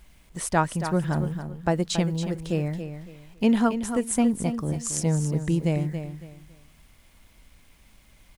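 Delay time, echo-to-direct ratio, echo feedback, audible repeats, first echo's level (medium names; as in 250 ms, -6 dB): 278 ms, -9.0 dB, 27%, 3, -9.5 dB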